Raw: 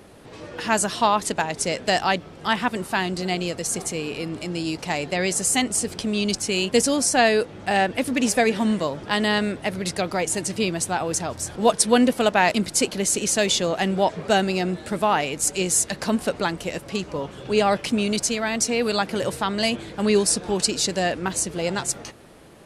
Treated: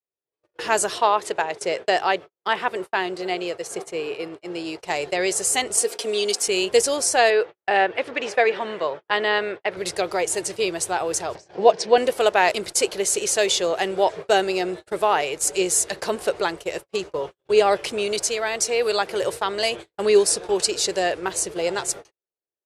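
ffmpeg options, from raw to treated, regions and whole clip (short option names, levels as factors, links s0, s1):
-filter_complex "[0:a]asettb=1/sr,asplit=3[s0][s1][s2];[s0]atrim=end=0.984[s3];[s1]atrim=start=0.98:end=4.8,asetpts=PTS-STARTPTS,afade=t=in:d=0.004:c=qsin,afade=t=out:st=3.816:d=0.004:c=qsin,highpass=100,bass=f=250:g=-3,treble=f=4000:g=-8[s4];[s2]atrim=start=4.796[s5];[s3][s4]acrossfade=d=0.004:c1=hsin:c2=qsin[s6];[s6][s5]acrossfade=d=0.004:c1=qsin:c2=hsin,asettb=1/sr,asplit=3[s7][s8][s9];[s7]atrim=end=5.774[s10];[s8]atrim=start=5.77:end=6.48,asetpts=PTS-STARTPTS,afade=t=in:d=0.004:c=qsin,afade=t=out:st=0.706:d=0.004:c=qsin,highpass=f=250:w=0.5412,highpass=f=250:w=1.3066,highshelf=f=10000:g=8,aecho=1:1:4.3:0.71,atrim=end_sample=31311[s11];[s9]atrim=start=6.476[s12];[s10][s11]acrossfade=d=0.004:c1=hsin:c2=qsin[s13];[s13][s12]acrossfade=d=0.004:c1=qsin:c2=hsin,asettb=1/sr,asplit=3[s14][s15][s16];[s14]atrim=end=7.304[s17];[s15]atrim=start=7.3:end=9.77,asetpts=PTS-STARTPTS,afade=t=in:d=0.004:c=qsin,afade=t=out:st=2.466:d=0.004:c=qsin,highpass=110,lowpass=2600,tiltshelf=f=660:g=-4[s18];[s16]atrim=start=9.766[s19];[s17][s18]acrossfade=d=0.004:c1=hsin:c2=qsin[s20];[s20][s19]acrossfade=d=0.004:c1=qsin:c2=hsin,asettb=1/sr,asplit=3[s21][s22][s23];[s21]atrim=end=11.354[s24];[s22]atrim=start=11.35:end=11.98,asetpts=PTS-STARTPTS,afade=t=in:d=0.004:c=qsin,afade=t=out:st=0.626:d=0.004:c=qsin,acompressor=mode=upward:threshold=0.0708:ratio=2.5:attack=3.2:release=140:knee=2.83:detection=peak,highpass=140,equalizer=f=180:t=q:w=4:g=6,equalizer=f=730:t=q:w=4:g=4,equalizer=f=1300:t=q:w=4:g=-8,equalizer=f=3500:t=q:w=4:g=-6,lowpass=f=5400:w=0.5412,lowpass=f=5400:w=1.3066[s25];[s23]atrim=start=11.976[s26];[s24][s25]acrossfade=d=0.004:c1=hsin:c2=qsin[s27];[s27][s26]acrossfade=d=0.004:c1=qsin:c2=hsin,adynamicequalizer=threshold=0.0158:dfrequency=230:dqfactor=1:tfrequency=230:tqfactor=1:attack=5:release=100:ratio=0.375:range=2.5:mode=cutabove:tftype=bell,agate=range=0.00224:threshold=0.0251:ratio=16:detection=peak,lowshelf=f=310:t=q:w=3:g=-6.5"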